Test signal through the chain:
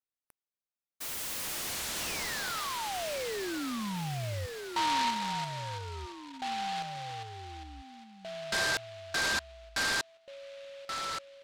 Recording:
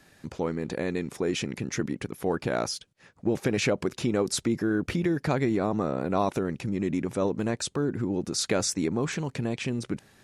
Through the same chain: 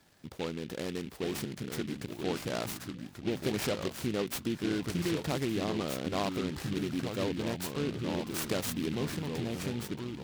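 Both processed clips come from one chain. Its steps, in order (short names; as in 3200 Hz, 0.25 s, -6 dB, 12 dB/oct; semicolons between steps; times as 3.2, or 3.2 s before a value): echoes that change speed 0.756 s, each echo -3 st, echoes 3, each echo -6 dB; noise-modulated delay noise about 2600 Hz, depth 0.094 ms; gain -7 dB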